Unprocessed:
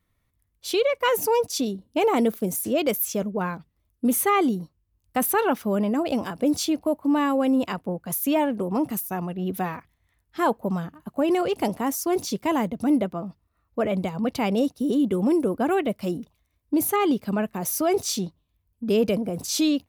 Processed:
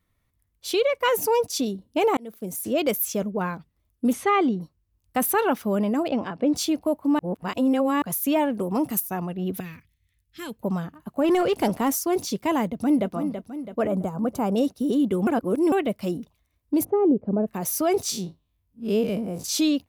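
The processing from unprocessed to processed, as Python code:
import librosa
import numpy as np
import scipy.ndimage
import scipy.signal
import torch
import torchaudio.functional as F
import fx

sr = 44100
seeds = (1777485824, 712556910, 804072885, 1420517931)

y = fx.lowpass(x, sr, hz=fx.line((4.12, 5600.0), (4.6, 3200.0)), slope=12, at=(4.12, 4.6), fade=0.02)
y = fx.bandpass_edges(y, sr, low_hz=100.0, high_hz=3100.0, at=(6.08, 6.56))
y = fx.high_shelf(y, sr, hz=5000.0, db=6.5, at=(8.55, 9.0))
y = fx.curve_eq(y, sr, hz=(110.0, 460.0, 770.0, 2500.0), db=(0, -14, -26, -1), at=(9.6, 10.63))
y = fx.leveller(y, sr, passes=1, at=(11.24, 11.99))
y = fx.echo_throw(y, sr, start_s=12.65, length_s=0.47, ms=330, feedback_pct=55, wet_db=-8.0)
y = fx.band_shelf(y, sr, hz=3000.0, db=-14.0, octaves=1.7, at=(13.87, 14.56))
y = fx.lowpass_res(y, sr, hz=510.0, q=1.6, at=(16.83, 17.46), fade=0.02)
y = fx.spec_blur(y, sr, span_ms=82.0, at=(18.1, 19.42), fade=0.02)
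y = fx.edit(y, sr, fx.fade_in_span(start_s=2.17, length_s=0.62),
    fx.reverse_span(start_s=7.19, length_s=0.83),
    fx.reverse_span(start_s=15.27, length_s=0.45), tone=tone)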